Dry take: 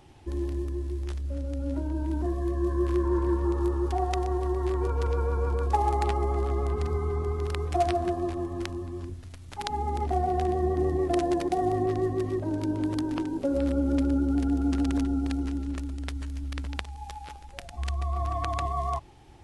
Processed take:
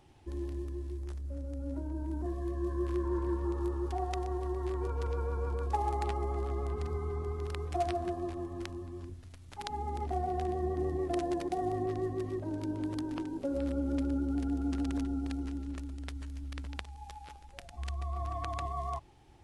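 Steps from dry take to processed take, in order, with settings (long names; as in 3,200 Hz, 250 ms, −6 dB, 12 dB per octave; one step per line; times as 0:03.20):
0:00.97–0:02.26: parametric band 3,100 Hz −6.5 dB 1.6 octaves
level −7 dB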